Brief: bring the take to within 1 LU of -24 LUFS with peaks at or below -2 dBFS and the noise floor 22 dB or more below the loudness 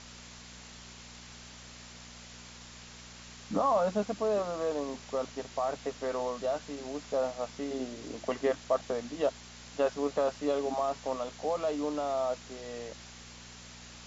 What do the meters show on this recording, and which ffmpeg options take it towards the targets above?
hum 60 Hz; highest harmonic 240 Hz; hum level -51 dBFS; noise floor -50 dBFS; noise floor target -55 dBFS; loudness -33.0 LUFS; peak level -16.5 dBFS; loudness target -24.0 LUFS
-> -af "bandreject=f=60:t=h:w=4,bandreject=f=120:t=h:w=4,bandreject=f=180:t=h:w=4,bandreject=f=240:t=h:w=4"
-af "afftdn=nr=6:nf=-50"
-af "volume=2.82"

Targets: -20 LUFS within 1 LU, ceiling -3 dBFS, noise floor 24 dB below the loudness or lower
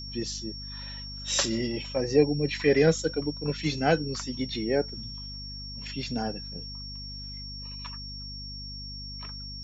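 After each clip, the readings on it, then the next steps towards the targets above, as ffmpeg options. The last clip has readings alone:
hum 50 Hz; highest harmonic 250 Hz; hum level -39 dBFS; steady tone 5.5 kHz; tone level -39 dBFS; loudness -29.5 LUFS; peak level -8.5 dBFS; loudness target -20.0 LUFS
-> -af "bandreject=f=50:t=h:w=6,bandreject=f=100:t=h:w=6,bandreject=f=150:t=h:w=6,bandreject=f=200:t=h:w=6,bandreject=f=250:t=h:w=6"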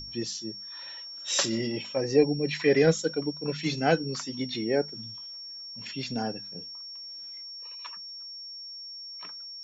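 hum not found; steady tone 5.5 kHz; tone level -39 dBFS
-> -af "bandreject=f=5500:w=30"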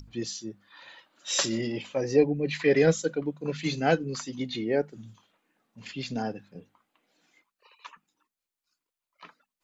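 steady tone not found; loudness -28.0 LUFS; peak level -9.0 dBFS; loudness target -20.0 LUFS
-> -af "volume=2.51,alimiter=limit=0.708:level=0:latency=1"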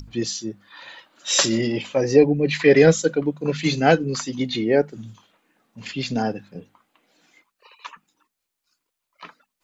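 loudness -20.0 LUFS; peak level -3.0 dBFS; noise floor -82 dBFS

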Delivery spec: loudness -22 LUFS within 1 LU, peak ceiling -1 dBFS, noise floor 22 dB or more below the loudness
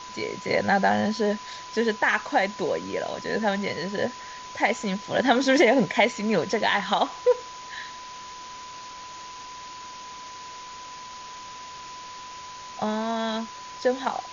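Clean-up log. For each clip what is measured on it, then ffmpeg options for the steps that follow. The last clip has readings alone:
steady tone 1 kHz; tone level -39 dBFS; noise floor -41 dBFS; noise floor target -47 dBFS; loudness -25.0 LUFS; peak level -7.5 dBFS; loudness target -22.0 LUFS
-> -af "bandreject=f=1000:w=30"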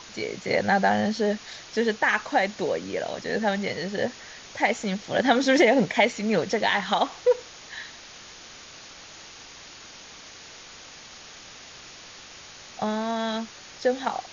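steady tone not found; noise floor -45 dBFS; noise floor target -47 dBFS
-> -af "afftdn=nr=6:nf=-45"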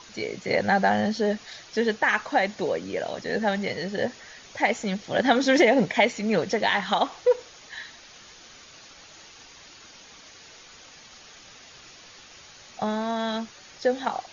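noise floor -49 dBFS; loudness -25.0 LUFS; peak level -7.5 dBFS; loudness target -22.0 LUFS
-> -af "volume=1.41"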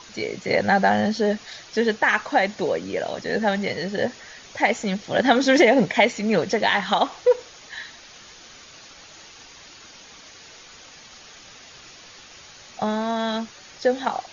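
loudness -22.0 LUFS; peak level -4.5 dBFS; noise floor -46 dBFS

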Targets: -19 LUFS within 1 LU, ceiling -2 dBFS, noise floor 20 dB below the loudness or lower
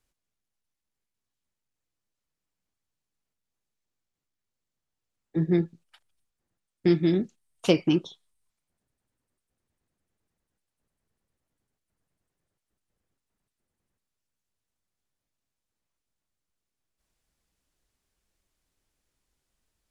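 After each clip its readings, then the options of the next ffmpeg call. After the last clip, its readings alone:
loudness -26.0 LUFS; peak level -7.5 dBFS; loudness target -19.0 LUFS
-> -af "volume=2.24,alimiter=limit=0.794:level=0:latency=1"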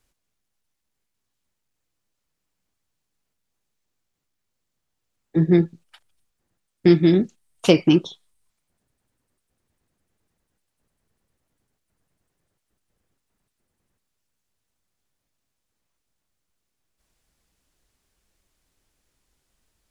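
loudness -19.0 LUFS; peak level -2.0 dBFS; noise floor -79 dBFS

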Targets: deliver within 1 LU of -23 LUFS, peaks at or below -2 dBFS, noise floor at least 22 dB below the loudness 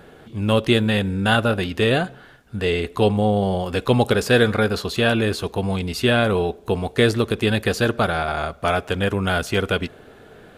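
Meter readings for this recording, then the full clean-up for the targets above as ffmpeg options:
loudness -20.5 LUFS; peak level -2.0 dBFS; loudness target -23.0 LUFS
-> -af "volume=0.75"

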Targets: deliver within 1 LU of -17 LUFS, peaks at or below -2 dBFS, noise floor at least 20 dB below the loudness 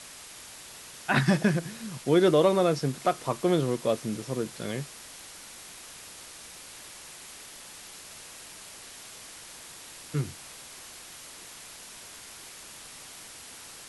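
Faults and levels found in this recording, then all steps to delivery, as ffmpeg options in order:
noise floor -46 dBFS; noise floor target -47 dBFS; loudness -27.0 LUFS; peak level -10.0 dBFS; loudness target -17.0 LUFS
-> -af "afftdn=nr=6:nf=-46"
-af "volume=3.16,alimiter=limit=0.794:level=0:latency=1"

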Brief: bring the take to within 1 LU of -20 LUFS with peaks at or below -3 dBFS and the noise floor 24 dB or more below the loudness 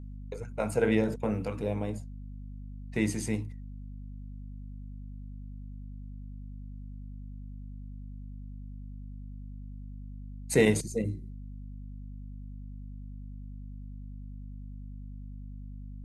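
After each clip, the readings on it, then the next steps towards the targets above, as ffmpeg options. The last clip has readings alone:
hum 50 Hz; highest harmonic 250 Hz; hum level -39 dBFS; loudness -36.0 LUFS; peak level -10.0 dBFS; loudness target -20.0 LUFS
-> -af "bandreject=f=50:t=h:w=6,bandreject=f=100:t=h:w=6,bandreject=f=150:t=h:w=6,bandreject=f=200:t=h:w=6,bandreject=f=250:t=h:w=6"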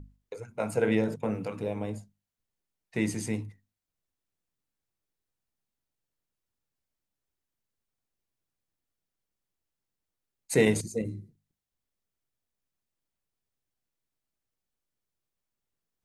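hum not found; loudness -30.0 LUFS; peak level -10.5 dBFS; loudness target -20.0 LUFS
-> -af "volume=3.16,alimiter=limit=0.708:level=0:latency=1"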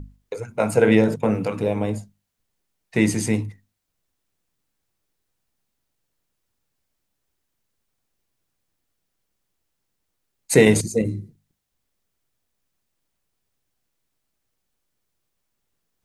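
loudness -20.5 LUFS; peak level -3.0 dBFS; noise floor -78 dBFS

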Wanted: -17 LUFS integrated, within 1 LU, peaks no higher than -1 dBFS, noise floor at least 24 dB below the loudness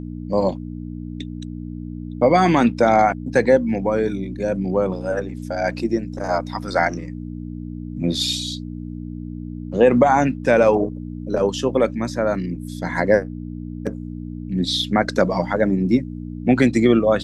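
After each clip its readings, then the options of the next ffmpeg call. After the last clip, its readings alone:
hum 60 Hz; highest harmonic 300 Hz; hum level -28 dBFS; loudness -20.0 LUFS; peak level -2.5 dBFS; loudness target -17.0 LUFS
-> -af "bandreject=f=60:t=h:w=4,bandreject=f=120:t=h:w=4,bandreject=f=180:t=h:w=4,bandreject=f=240:t=h:w=4,bandreject=f=300:t=h:w=4"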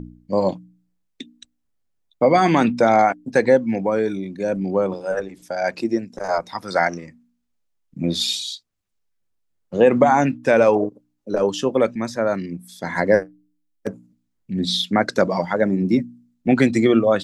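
hum not found; loudness -20.0 LUFS; peak level -2.0 dBFS; loudness target -17.0 LUFS
-> -af "volume=1.41,alimiter=limit=0.891:level=0:latency=1"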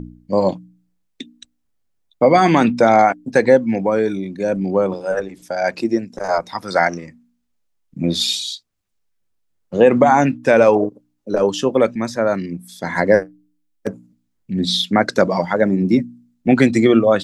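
loudness -17.0 LUFS; peak level -1.0 dBFS; noise floor -69 dBFS

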